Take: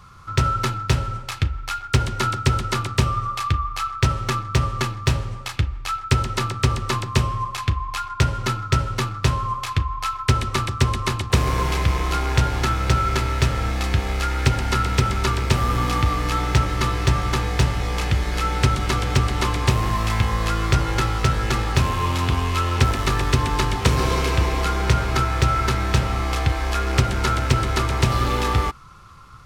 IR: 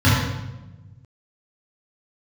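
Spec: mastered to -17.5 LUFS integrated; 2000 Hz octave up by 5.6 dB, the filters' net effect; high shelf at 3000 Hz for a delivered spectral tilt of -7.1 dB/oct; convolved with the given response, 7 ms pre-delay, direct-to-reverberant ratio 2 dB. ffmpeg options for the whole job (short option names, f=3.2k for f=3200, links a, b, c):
-filter_complex "[0:a]equalizer=f=2k:t=o:g=8.5,highshelf=f=3k:g=-4.5,asplit=2[a][b];[1:a]atrim=start_sample=2205,adelay=7[c];[b][c]afir=irnorm=-1:irlink=0,volume=-24.5dB[d];[a][d]amix=inputs=2:normalize=0,volume=-9dB"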